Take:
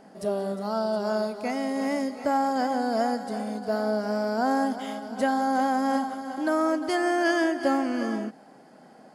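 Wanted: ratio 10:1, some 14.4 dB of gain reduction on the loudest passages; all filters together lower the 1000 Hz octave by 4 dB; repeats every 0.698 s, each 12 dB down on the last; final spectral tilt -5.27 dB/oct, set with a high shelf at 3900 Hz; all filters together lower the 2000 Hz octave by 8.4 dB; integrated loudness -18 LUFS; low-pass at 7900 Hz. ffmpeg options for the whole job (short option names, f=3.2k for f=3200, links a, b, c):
-af "lowpass=7.9k,equalizer=f=1k:t=o:g=-4,equalizer=f=2k:t=o:g=-8.5,highshelf=f=3.9k:g=-4.5,acompressor=threshold=-36dB:ratio=10,aecho=1:1:698|1396|2094:0.251|0.0628|0.0157,volume=21.5dB"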